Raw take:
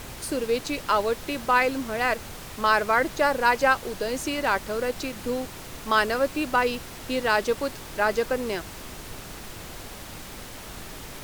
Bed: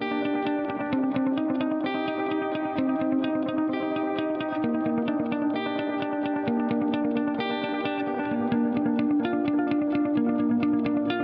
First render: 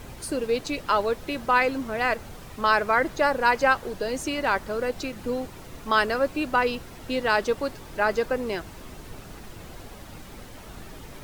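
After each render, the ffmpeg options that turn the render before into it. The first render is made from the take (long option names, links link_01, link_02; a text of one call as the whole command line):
ffmpeg -i in.wav -af "afftdn=noise_reduction=8:noise_floor=-41" out.wav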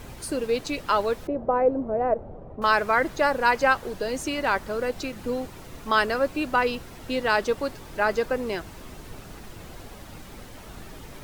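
ffmpeg -i in.wav -filter_complex "[0:a]asettb=1/sr,asplit=3[link_01][link_02][link_03];[link_01]atrim=end=1.274[link_04];[link_02]atrim=start=1.27:end=2.62,asetpts=PTS-STARTPTS,afade=type=in:duration=0.004:curve=qsin,afade=type=out:start_time=1.346:duration=0.004:curve=qsin,lowpass=frequency=610:width_type=q:width=2.1[link_05];[link_03]atrim=start=2.616[link_06];[link_04][link_05]acrossfade=duration=0.004:curve1=hsin:curve2=qsin[link_07];[link_07][link_06]acrossfade=duration=0.004:curve1=qsin:curve2=hsin" out.wav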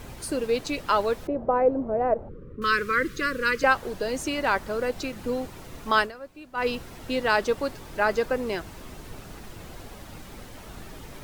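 ffmpeg -i in.wav -filter_complex "[0:a]asettb=1/sr,asplit=3[link_01][link_02][link_03];[link_01]atrim=end=2.294[link_04];[link_02]atrim=start=2.29:end=3.64,asetpts=PTS-STARTPTS,afade=type=in:duration=0.004:curve=qsin,afade=type=out:start_time=1.346:duration=0.004:curve=qsin,asuperstop=centerf=760:order=8:qfactor=1.2[link_05];[link_03]atrim=start=3.636[link_06];[link_04][link_05]acrossfade=duration=0.004:curve1=hsin:curve2=qsin[link_07];[link_07][link_06]acrossfade=duration=0.004:curve1=qsin:curve2=hsin,asplit=3[link_08][link_09][link_10];[link_08]atrim=end=6.12,asetpts=PTS-STARTPTS,afade=type=out:start_time=5.99:duration=0.13:silence=0.141254[link_11];[link_09]atrim=start=6.12:end=6.54,asetpts=PTS-STARTPTS,volume=-17dB[link_12];[link_10]atrim=start=6.54,asetpts=PTS-STARTPTS,afade=type=in:duration=0.13:silence=0.141254[link_13];[link_11][link_12][link_13]concat=n=3:v=0:a=1" out.wav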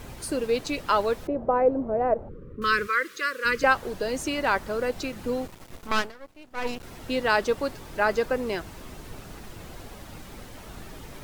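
ffmpeg -i in.wav -filter_complex "[0:a]asplit=3[link_01][link_02][link_03];[link_01]afade=type=out:start_time=2.86:duration=0.02[link_04];[link_02]highpass=590,afade=type=in:start_time=2.86:duration=0.02,afade=type=out:start_time=3.44:duration=0.02[link_05];[link_03]afade=type=in:start_time=3.44:duration=0.02[link_06];[link_04][link_05][link_06]amix=inputs=3:normalize=0,asettb=1/sr,asplit=3[link_07][link_08][link_09];[link_07]atrim=end=5.474[link_10];[link_08]atrim=start=5.47:end=6.83,asetpts=PTS-STARTPTS,afade=type=in:duration=0.004:curve=qsin,afade=type=out:start_time=1.356:duration=0.004:curve=qsin,aeval=exprs='max(val(0),0)':channel_layout=same[link_11];[link_09]atrim=start=6.826[link_12];[link_10][link_11]acrossfade=duration=0.004:curve1=hsin:curve2=qsin[link_13];[link_13][link_12]acrossfade=duration=0.004:curve1=qsin:curve2=hsin" out.wav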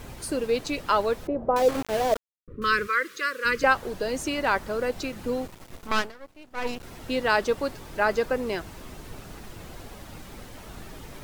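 ffmpeg -i in.wav -filter_complex "[0:a]asettb=1/sr,asplit=3[link_01][link_02][link_03];[link_01]atrim=end=1.564[link_04];[link_02]atrim=start=1.56:end=2.48,asetpts=PTS-STARTPTS,afade=type=in:duration=0.004:curve=qsin,afade=type=out:start_time=0.916:duration=0.004:curve=qsin,aeval=exprs='val(0)*gte(abs(val(0)),0.0447)':channel_layout=same[link_05];[link_03]atrim=start=2.476[link_06];[link_04][link_05]acrossfade=duration=0.004:curve1=hsin:curve2=qsin[link_07];[link_07][link_06]acrossfade=duration=0.004:curve1=qsin:curve2=hsin" out.wav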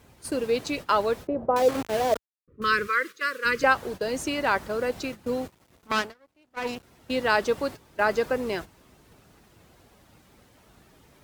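ffmpeg -i in.wav -af "agate=range=-13dB:threshold=-34dB:ratio=16:detection=peak,highpass=58" out.wav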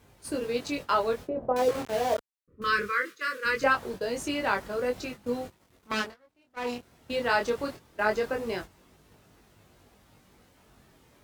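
ffmpeg -i in.wav -af "flanger=delay=20:depth=5.1:speed=0.21" out.wav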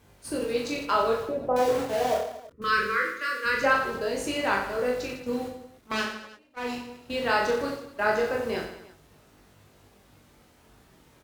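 ffmpeg -i in.wav -af "aecho=1:1:40|90|152.5|230.6|328.3:0.631|0.398|0.251|0.158|0.1" out.wav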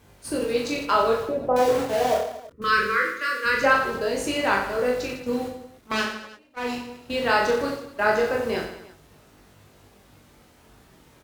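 ffmpeg -i in.wav -af "volume=3.5dB" out.wav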